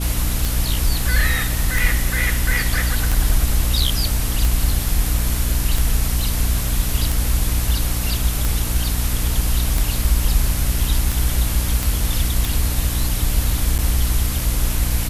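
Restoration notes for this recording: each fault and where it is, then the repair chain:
mains hum 60 Hz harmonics 5 −23 dBFS
scratch tick 45 rpm
0:11.83: click
0:13.78–0:13.79: drop-out 8.5 ms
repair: click removal
hum removal 60 Hz, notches 5
repair the gap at 0:13.78, 8.5 ms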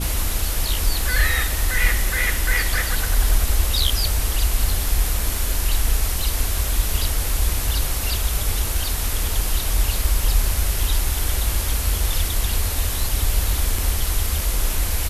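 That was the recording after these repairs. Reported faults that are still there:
none of them is left

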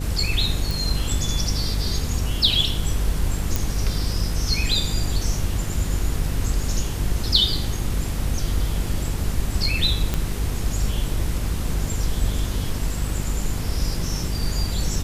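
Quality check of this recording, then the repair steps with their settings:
mains buzz 50 Hz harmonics 10 −27 dBFS
0:00.71: click
0:03.56: click
0:10.14: click −8 dBFS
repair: click removal
hum removal 50 Hz, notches 10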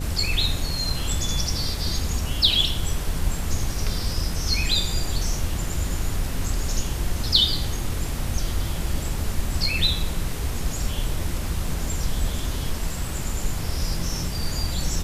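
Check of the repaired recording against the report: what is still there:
none of them is left

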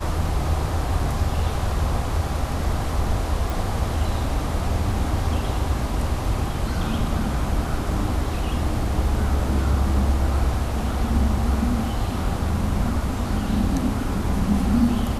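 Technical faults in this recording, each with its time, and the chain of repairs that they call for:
0:03.50: click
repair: click removal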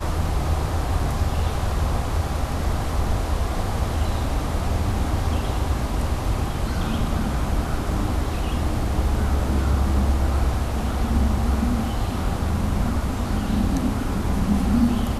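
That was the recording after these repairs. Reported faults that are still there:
none of them is left

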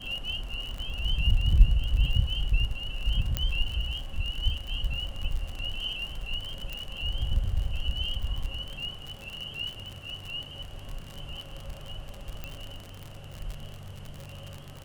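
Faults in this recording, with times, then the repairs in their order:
surface crackle 58 per second −32 dBFS
0:03.37: click −12 dBFS
0:06.73: click
0:12.44: click −21 dBFS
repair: click removal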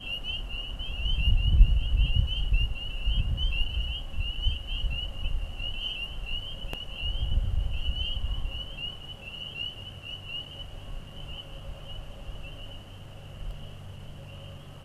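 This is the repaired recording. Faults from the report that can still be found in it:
0:03.37: click
0:06.73: click
0:12.44: click

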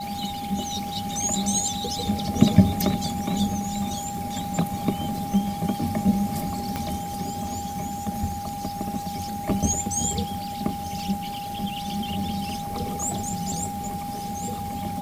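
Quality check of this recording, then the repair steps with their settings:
surface crackle 59 per second −35 dBFS
whistle 810 Hz −31 dBFS
0:06.76: click −13 dBFS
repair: click removal
notch filter 810 Hz, Q 30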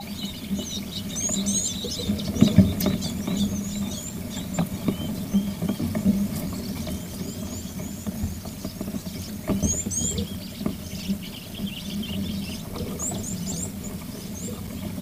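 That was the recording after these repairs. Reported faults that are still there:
0:06.76: click

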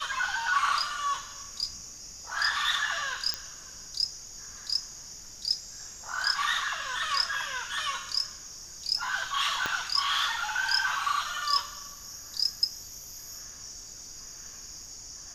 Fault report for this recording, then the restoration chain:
0:03.34: click −12 dBFS
0:09.66: click −14 dBFS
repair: click removal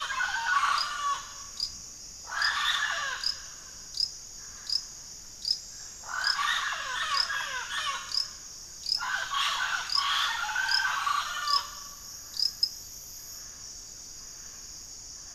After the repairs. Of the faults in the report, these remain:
0:09.66: click

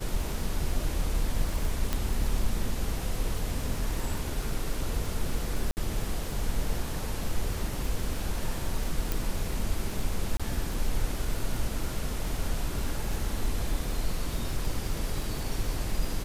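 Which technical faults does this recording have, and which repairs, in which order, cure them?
surface crackle 46 per second −32 dBFS
0:01.93: click −13 dBFS
0:05.71–0:05.77: drop-out 59 ms
0:09.12: click
0:10.37–0:10.40: drop-out 26 ms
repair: click removal
repair the gap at 0:05.71, 59 ms
repair the gap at 0:10.37, 26 ms

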